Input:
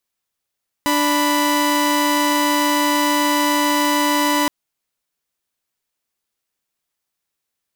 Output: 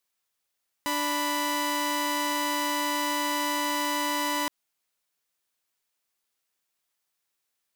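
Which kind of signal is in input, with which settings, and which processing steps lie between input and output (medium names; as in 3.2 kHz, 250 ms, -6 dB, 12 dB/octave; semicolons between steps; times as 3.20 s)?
chord D4/B5 saw, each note -15.5 dBFS 3.62 s
peak limiter -19 dBFS; bass shelf 370 Hz -7.5 dB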